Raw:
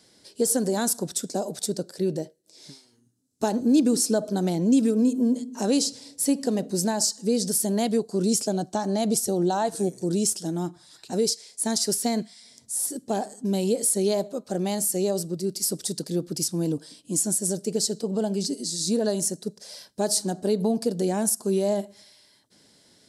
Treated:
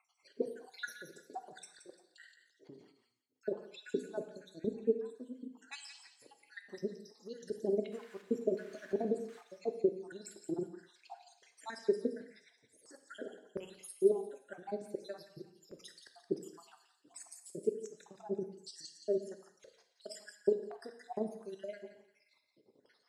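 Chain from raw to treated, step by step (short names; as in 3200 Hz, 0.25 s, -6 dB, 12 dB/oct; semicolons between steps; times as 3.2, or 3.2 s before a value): random spectral dropouts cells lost 72%; in parallel at +1.5 dB: compressor, threshold -35 dBFS, peak gain reduction 15 dB; on the sum: tremolo 19 Hz, depth 60%; 7.92–9.41 requantised 8-bit, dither triangular; LFO band-pass square 1.4 Hz 410–1600 Hz; on a send: thin delay 0.173 s, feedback 32%, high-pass 1700 Hz, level -9 dB; on the sum: non-linear reverb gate 0.28 s falling, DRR 7.5 dB; 2.08–3.54 sustainer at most 78 dB/s; gain -1 dB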